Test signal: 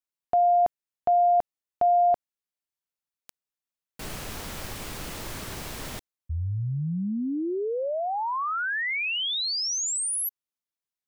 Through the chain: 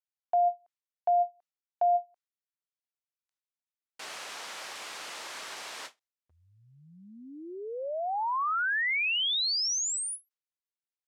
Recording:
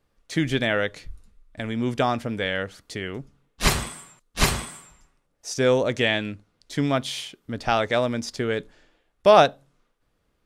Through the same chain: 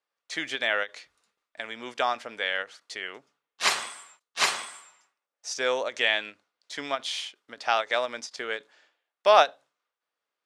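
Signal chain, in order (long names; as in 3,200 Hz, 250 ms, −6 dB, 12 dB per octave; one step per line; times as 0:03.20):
noise gate with hold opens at −48 dBFS, hold 15 ms, range −9 dB
band-pass filter 740–7,400 Hz
every ending faded ahead of time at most 370 dB per second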